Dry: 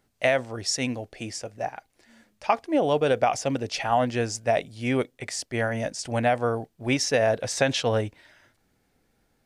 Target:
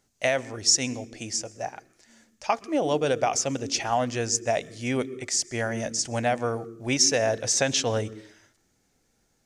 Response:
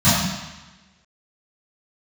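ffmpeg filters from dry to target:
-filter_complex "[0:a]equalizer=frequency=6500:width=1.5:gain=12.5,asplit=2[link_01][link_02];[1:a]atrim=start_sample=2205,asetrate=83790,aresample=44100,adelay=109[link_03];[link_02][link_03]afir=irnorm=-1:irlink=0,volume=-39.5dB[link_04];[link_01][link_04]amix=inputs=2:normalize=0,volume=-2.5dB"

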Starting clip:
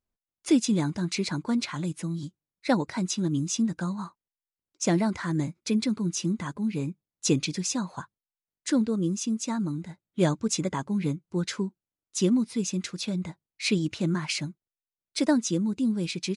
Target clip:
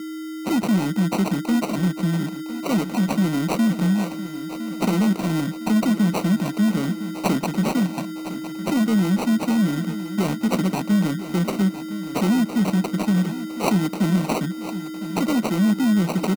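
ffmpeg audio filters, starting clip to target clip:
ffmpeg -i in.wav -filter_complex "[0:a]aeval=exprs='val(0)+0.00891*sin(2*PI*7100*n/s)':channel_layout=same,asplit=2[link_01][link_02];[link_02]acompressor=threshold=-34dB:ratio=6,volume=1dB[link_03];[link_01][link_03]amix=inputs=2:normalize=0,aresample=22050,aresample=44100,acrossover=split=2100[link_04][link_05];[link_04]volume=25dB,asoftclip=hard,volume=-25dB[link_06];[link_06][link_05]amix=inputs=2:normalize=0,acrusher=samples=26:mix=1:aa=0.000001,lowshelf=frequency=130:width_type=q:width=3:gain=-13.5,aecho=1:1:1009|2018|3027|4036|5045:0.224|0.105|0.0495|0.0232|0.0109,volume=3dB" out.wav

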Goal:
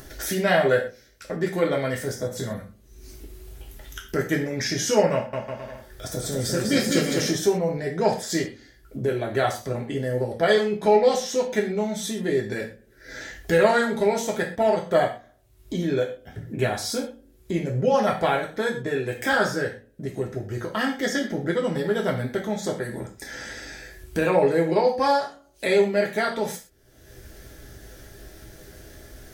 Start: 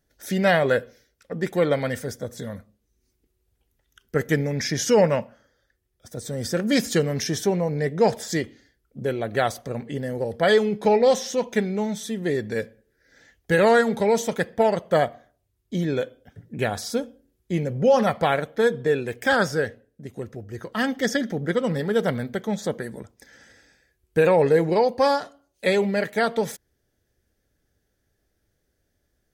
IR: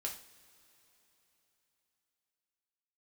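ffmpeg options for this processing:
-filter_complex "[0:a]acompressor=mode=upward:threshold=-20dB:ratio=2.5,asettb=1/sr,asplit=3[link_01][link_02][link_03];[link_01]atrim=end=5.134[link_04];[link_02]atrim=start=5.13:end=7.31,asetpts=PTS-STARTPTS,afade=type=in:duration=0.004:curve=qsin,afade=type=out:start_time=2.176:duration=0.004:curve=qsin,aecho=1:1:200|350|462.5|546.9|610.2:0.631|0.398|0.251|0.158|0.1,atrim=end_sample=96138[link_05];[link_03]atrim=start=7.306[link_06];[link_04][link_05]acrossfade=duration=0.004:curve1=hsin:curve2=qsin[link_07];[link_07][link_06]acrossfade=duration=0.004:curve1=qsin:curve2=hsin[link_08];[1:a]atrim=start_sample=2205,atrim=end_sample=6174[link_09];[link_08][link_09]afir=irnorm=-1:irlink=0"

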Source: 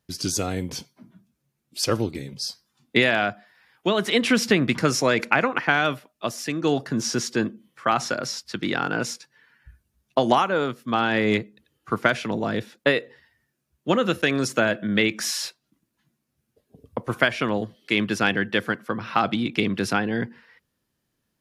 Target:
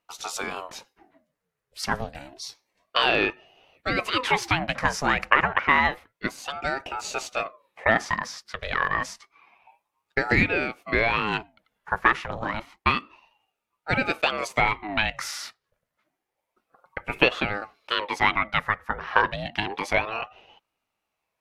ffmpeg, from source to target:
ffmpeg -i in.wav -af "equalizer=frequency=1400:width=0.8:gain=12.5,aeval=exprs='val(0)*sin(2*PI*680*n/s+680*0.6/0.29*sin(2*PI*0.29*n/s))':channel_layout=same,volume=-6dB" out.wav

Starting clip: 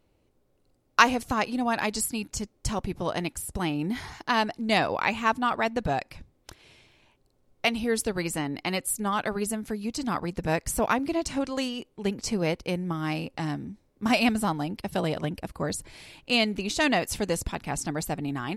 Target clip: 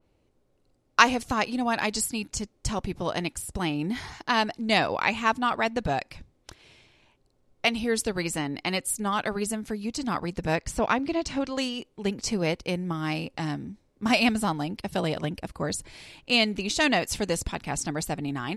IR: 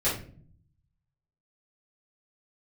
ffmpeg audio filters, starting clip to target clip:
-af "asetnsamples=nb_out_samples=441:pad=0,asendcmd='10.55 lowpass f 5300;11.58 lowpass f 10000',lowpass=9800,adynamicequalizer=threshold=0.0126:dfrequency=2100:dqfactor=0.7:tfrequency=2100:tqfactor=0.7:attack=5:release=100:ratio=0.375:range=1.5:mode=boostabove:tftype=highshelf"

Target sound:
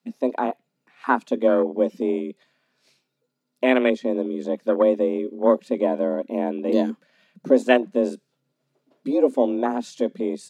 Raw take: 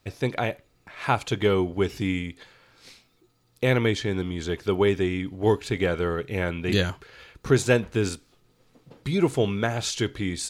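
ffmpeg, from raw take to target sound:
ffmpeg -i in.wav -af "afwtdn=0.0501,afreqshift=130,volume=3.5dB" out.wav

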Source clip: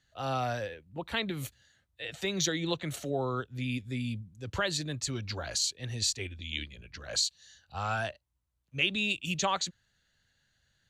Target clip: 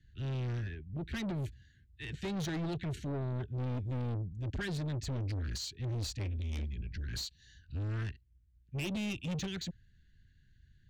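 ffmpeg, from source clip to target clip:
ffmpeg -i in.wav -af "asuperstop=centerf=790:order=20:qfactor=0.75,aemphasis=mode=reproduction:type=riaa,asoftclip=type=tanh:threshold=-33.5dB" out.wav

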